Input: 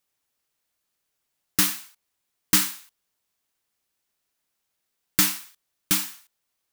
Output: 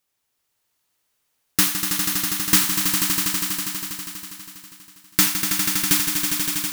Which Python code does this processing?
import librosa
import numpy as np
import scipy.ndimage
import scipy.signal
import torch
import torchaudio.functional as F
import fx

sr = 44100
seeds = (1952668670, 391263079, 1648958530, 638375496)

y = fx.echo_swell(x, sr, ms=81, loudest=5, wet_db=-7)
y = y * librosa.db_to_amplitude(2.5)